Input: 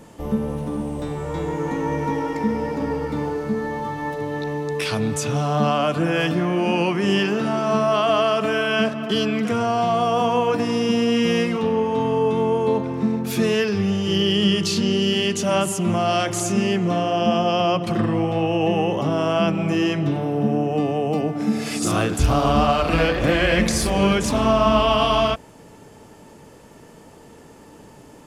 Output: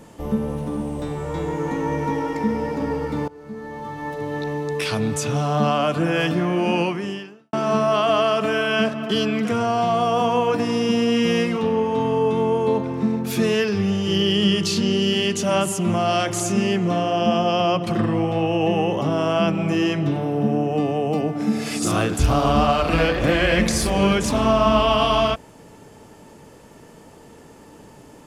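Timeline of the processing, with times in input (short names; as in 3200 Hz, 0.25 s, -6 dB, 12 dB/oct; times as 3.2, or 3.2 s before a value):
3.28–4.37 fade in, from -21.5 dB
6.8–7.53 fade out quadratic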